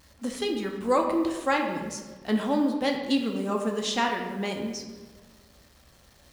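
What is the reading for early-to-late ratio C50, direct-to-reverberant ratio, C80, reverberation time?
5.5 dB, 1.5 dB, 7.0 dB, 1.4 s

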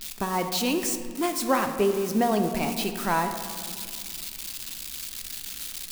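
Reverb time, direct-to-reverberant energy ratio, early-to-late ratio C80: 2.1 s, 6.0 dB, 9.0 dB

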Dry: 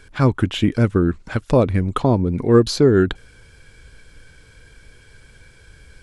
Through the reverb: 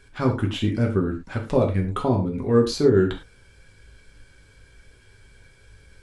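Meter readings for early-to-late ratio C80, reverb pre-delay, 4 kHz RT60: 15.5 dB, 4 ms, n/a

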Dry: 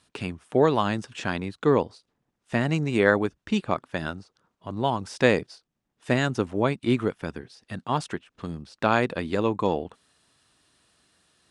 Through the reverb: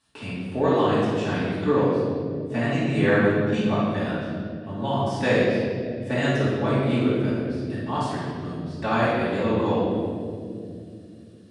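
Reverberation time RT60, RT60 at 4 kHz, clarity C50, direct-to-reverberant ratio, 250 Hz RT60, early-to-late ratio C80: 2.5 s, 1.6 s, -3.0 dB, -11.0 dB, 4.0 s, 0.5 dB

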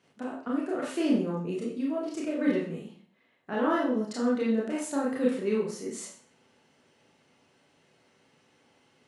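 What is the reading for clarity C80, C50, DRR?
8.5 dB, 4.0 dB, -5.0 dB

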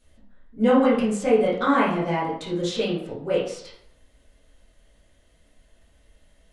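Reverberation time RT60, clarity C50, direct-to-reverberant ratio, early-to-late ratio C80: 0.70 s, 3.0 dB, -10.0 dB, 7.0 dB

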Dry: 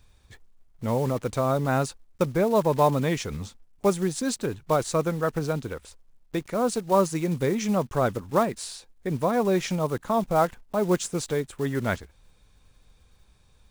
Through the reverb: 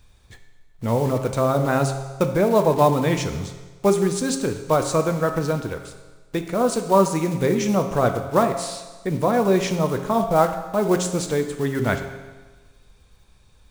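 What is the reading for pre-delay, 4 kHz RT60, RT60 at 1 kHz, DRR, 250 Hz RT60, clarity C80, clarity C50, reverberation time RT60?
7 ms, 1.2 s, 1.3 s, 6.0 dB, 1.3 s, 10.5 dB, 8.5 dB, 1.3 s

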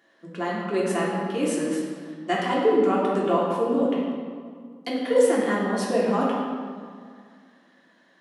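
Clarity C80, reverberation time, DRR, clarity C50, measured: 1.5 dB, 2.0 s, -5.5 dB, 0.0 dB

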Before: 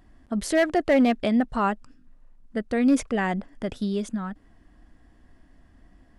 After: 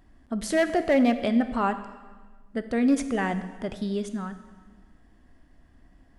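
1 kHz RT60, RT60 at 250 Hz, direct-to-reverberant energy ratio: 1.4 s, 1.5 s, 10.0 dB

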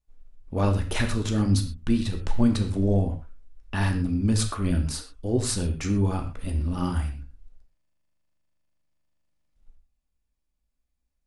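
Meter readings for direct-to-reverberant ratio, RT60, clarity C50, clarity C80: 4.0 dB, not exponential, 9.5 dB, 12.5 dB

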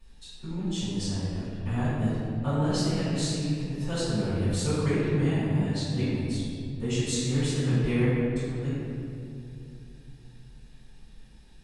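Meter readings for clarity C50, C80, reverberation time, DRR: -4.0 dB, -1.5 dB, 2.5 s, -15.0 dB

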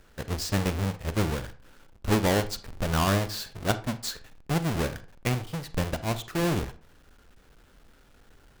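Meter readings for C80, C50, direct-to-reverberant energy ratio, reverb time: 20.0 dB, 15.0 dB, 12.0 dB, 0.45 s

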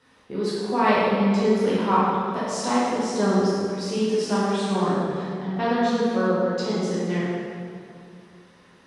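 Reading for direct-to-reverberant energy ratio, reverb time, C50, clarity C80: -9.5 dB, 2.3 s, -3.5 dB, -1.0 dB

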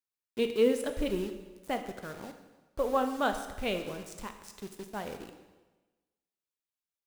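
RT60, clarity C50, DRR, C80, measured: 1.2 s, 9.0 dB, 7.0 dB, 10.5 dB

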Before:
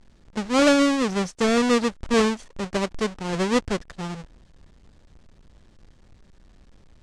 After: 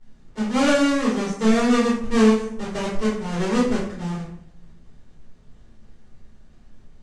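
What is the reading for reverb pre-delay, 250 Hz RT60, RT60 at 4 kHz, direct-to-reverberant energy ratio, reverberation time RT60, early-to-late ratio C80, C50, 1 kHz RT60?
5 ms, 0.95 s, 0.40 s, -8.5 dB, 0.70 s, 7.5 dB, 3.5 dB, 0.60 s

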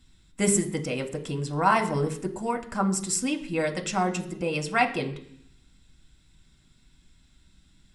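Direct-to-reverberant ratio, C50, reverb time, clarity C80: 4.0 dB, 13.5 dB, 0.65 s, 16.0 dB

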